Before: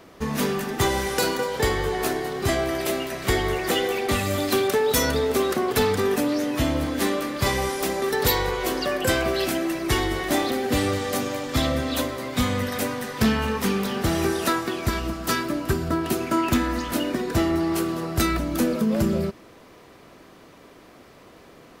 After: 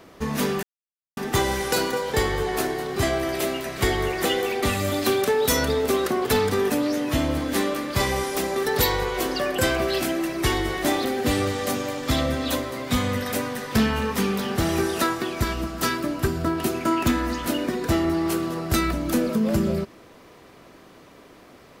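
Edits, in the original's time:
0.63 s: insert silence 0.54 s

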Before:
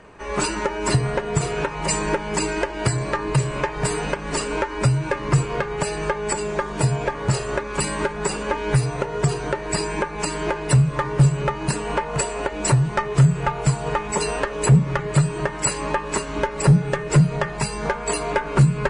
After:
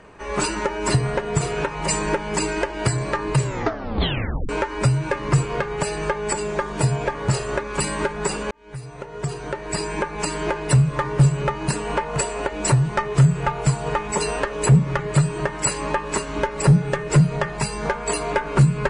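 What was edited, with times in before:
3.42 s: tape stop 1.07 s
8.51–10.12 s: fade in

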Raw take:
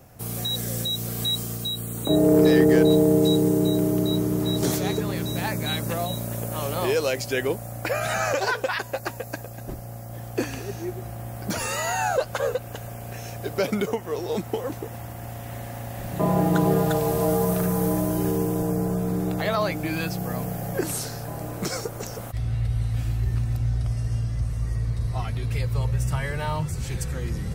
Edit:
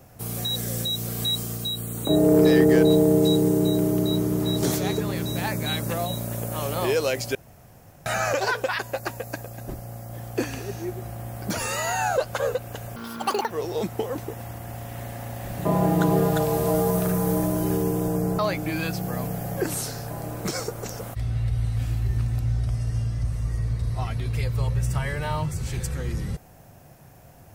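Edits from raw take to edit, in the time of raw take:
7.35–8.06 s: room tone
12.96–14.05 s: speed 199%
18.93–19.56 s: delete

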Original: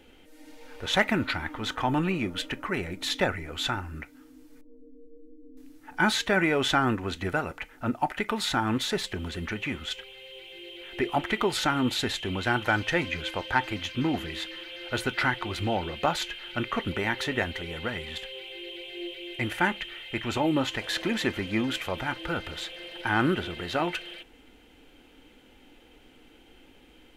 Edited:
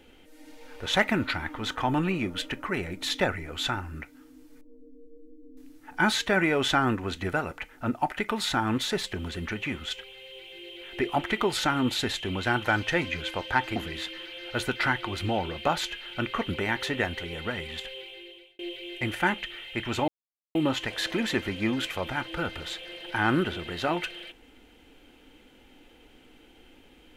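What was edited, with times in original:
13.76–14.14 s: delete
18.32–18.97 s: fade out
20.46 s: insert silence 0.47 s

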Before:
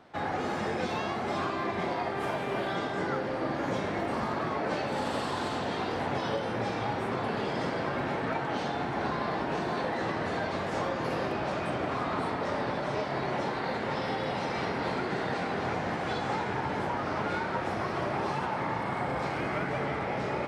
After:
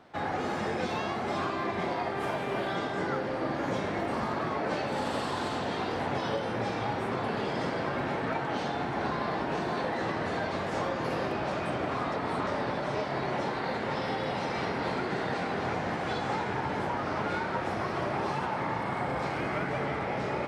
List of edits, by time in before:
12.12–12.47 s: reverse

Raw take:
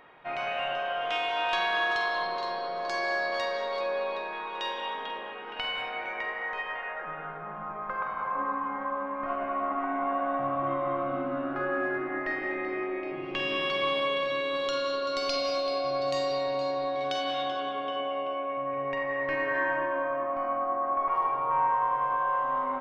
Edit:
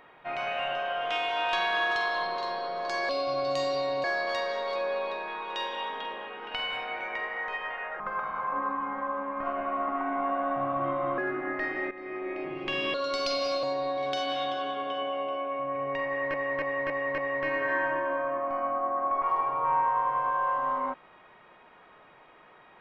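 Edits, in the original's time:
7.05–7.83 s: delete
11.01–11.85 s: delete
12.58–13.03 s: fade in, from -14 dB
13.61–14.97 s: delete
15.66–16.61 s: move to 3.09 s
19.04–19.32 s: loop, 5 plays

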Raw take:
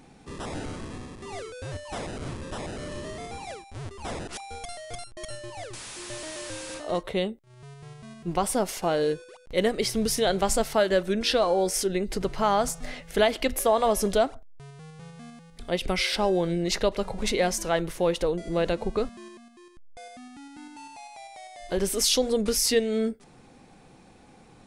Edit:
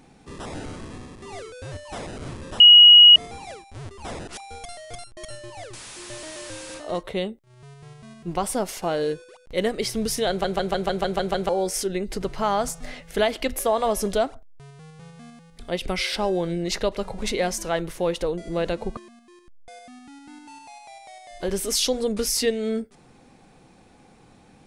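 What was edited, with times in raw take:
2.60–3.16 s: bleep 2.9 kHz -6 dBFS
10.29 s: stutter in place 0.15 s, 8 plays
18.97–19.26 s: delete

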